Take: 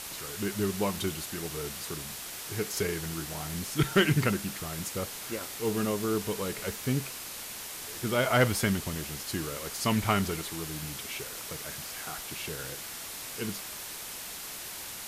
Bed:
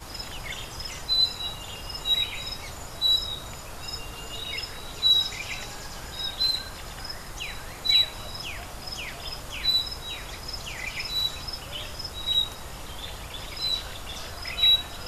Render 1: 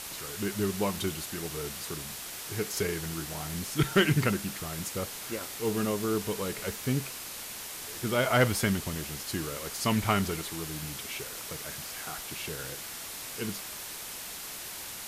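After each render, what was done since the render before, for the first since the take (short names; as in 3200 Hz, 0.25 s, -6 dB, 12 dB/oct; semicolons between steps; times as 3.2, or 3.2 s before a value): nothing audible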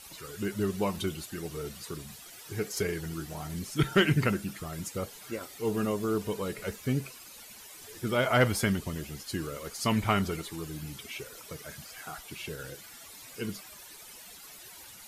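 denoiser 13 dB, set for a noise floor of -41 dBFS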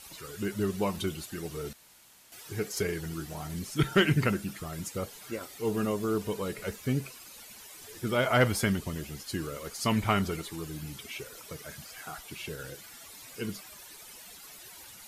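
1.73–2.32 room tone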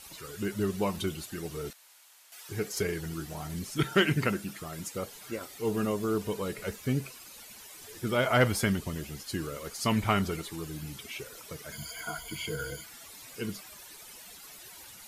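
1.7–2.49 HPF 720 Hz; 3.78–5.08 low shelf 91 Hz -11 dB; 11.72–12.84 ripple EQ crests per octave 1.8, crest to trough 18 dB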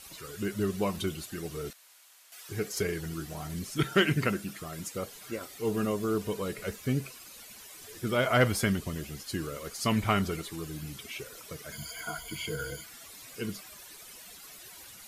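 notch 880 Hz, Q 12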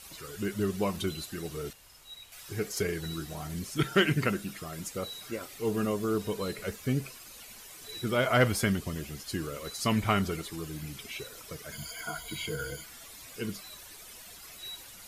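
add bed -24 dB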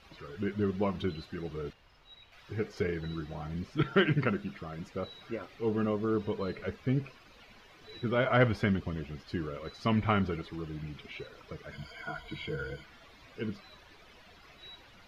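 air absorption 280 m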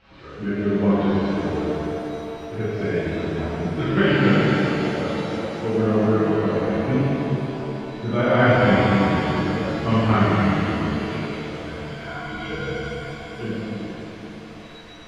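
air absorption 170 m; shimmer reverb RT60 3.4 s, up +7 st, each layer -8 dB, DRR -11 dB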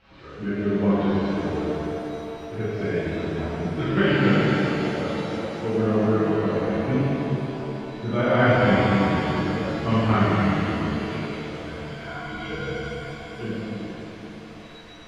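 gain -2 dB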